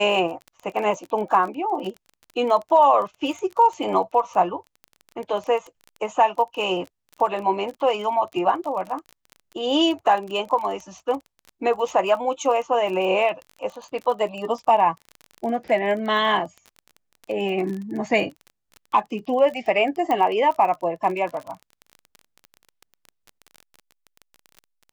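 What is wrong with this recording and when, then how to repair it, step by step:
surface crackle 26 per second −30 dBFS
0:20.11: click −13 dBFS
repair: click removal

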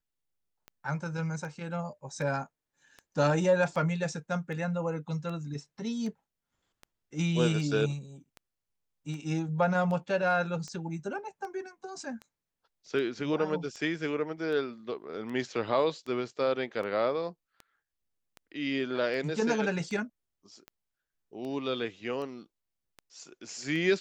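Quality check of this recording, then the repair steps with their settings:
scratch tick 78 rpm −29 dBFS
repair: click removal

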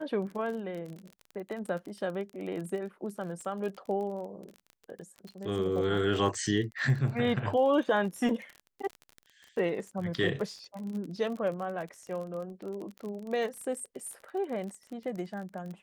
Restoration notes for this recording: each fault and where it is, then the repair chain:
surface crackle 34 per second −37 dBFS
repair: click removal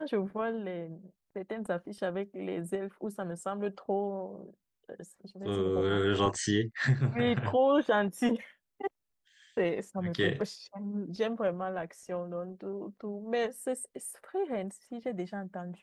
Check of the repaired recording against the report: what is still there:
none of them is left

